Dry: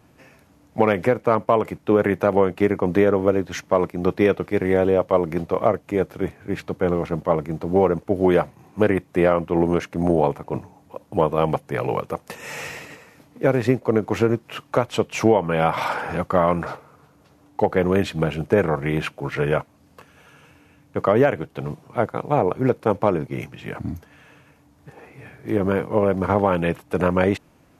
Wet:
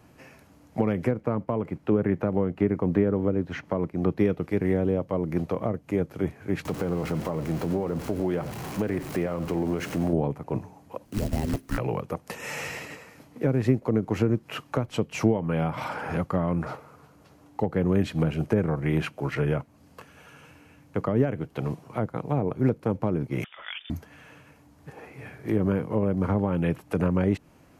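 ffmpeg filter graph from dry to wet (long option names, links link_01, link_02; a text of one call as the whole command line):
ffmpeg -i in.wav -filter_complex "[0:a]asettb=1/sr,asplit=3[link_01][link_02][link_03];[link_01]atrim=end=1.114[link_04];[link_02]atrim=start=1.11:end=4.18,asetpts=PTS-STARTPTS,afade=type=in:duration=0.004:curve=qsin,afade=type=out:start_time=3.066:duration=0.004:curve=qsin,acrossover=split=3400[link_05][link_06];[link_06]acompressor=threshold=-50dB:ratio=4:attack=1:release=60[link_07];[link_05][link_07]amix=inputs=2:normalize=0,highshelf=frequency=4600:gain=-7.5[link_08];[link_03]atrim=start=4.176[link_09];[link_04][link_08]acrossfade=duration=0.004:curve1=hsin:curve2=qsin[link_10];[link_10][link_09]acrossfade=duration=0.004:curve1=qsin:curve2=hsin,asettb=1/sr,asplit=3[link_11][link_12][link_13];[link_11]atrim=end=6.654[link_14];[link_12]atrim=start=6.65:end=10.13,asetpts=PTS-STARTPTS,afade=type=in:duration=0.004:curve=qsin,afade=type=out:start_time=3.476:duration=0.004:curve=qsin,aeval=exprs='val(0)+0.5*0.0282*sgn(val(0))':channel_layout=same,acompressor=threshold=-22dB:ratio=2.5:attack=3.2:release=140:knee=1:detection=peak,aecho=1:1:91:0.178,atrim=end_sample=153468[link_15];[link_13]atrim=start=10.126[link_16];[link_14][link_15]acrossfade=duration=0.004:curve1=hsin:curve2=qsin[link_17];[link_17][link_16]acrossfade=duration=0.004:curve1=qsin:curve2=hsin,asettb=1/sr,asplit=3[link_18][link_19][link_20];[link_18]atrim=end=11.054[link_21];[link_19]atrim=start=11.05:end=11.78,asetpts=PTS-STARTPTS,afade=type=in:duration=0.004:curve=qsin,afade=type=out:start_time=0.726:duration=0.004:curve=qsin,acompressor=threshold=-20dB:ratio=10:attack=3.2:release=140:knee=1:detection=peak,acrusher=bits=3:mode=log:mix=0:aa=0.000001,afreqshift=-410[link_22];[link_20]atrim=start=11.776[link_23];[link_21][link_22]acrossfade=duration=0.004:curve1=hsin:curve2=qsin[link_24];[link_24][link_23]acrossfade=duration=0.004:curve1=qsin:curve2=hsin,asettb=1/sr,asplit=3[link_25][link_26][link_27];[link_25]atrim=end=23.444[link_28];[link_26]atrim=start=23.44:end=23.9,asetpts=PTS-STARTPTS,afade=type=in:duration=0.004:curve=qsin,afade=type=out:start_time=0.456:duration=0.004:curve=qsin,highpass=580,acompressor=mode=upward:threshold=-43dB:ratio=2.5:attack=3.2:release=140:knee=2.83:detection=peak,lowpass=frequency=3200:width_type=q:width=0.5098,lowpass=frequency=3200:width_type=q:width=0.6013,lowpass=frequency=3200:width_type=q:width=0.9,lowpass=frequency=3200:width_type=q:width=2.563,afreqshift=-3800[link_29];[link_27]atrim=start=23.896[link_30];[link_28][link_29]acrossfade=duration=0.004:curve1=hsin:curve2=qsin[link_31];[link_31][link_30]acrossfade=duration=0.004:curve1=qsin:curve2=hsin,bandreject=frequency=3600:width=19,acrossover=split=310[link_32][link_33];[link_33]acompressor=threshold=-30dB:ratio=6[link_34];[link_32][link_34]amix=inputs=2:normalize=0" out.wav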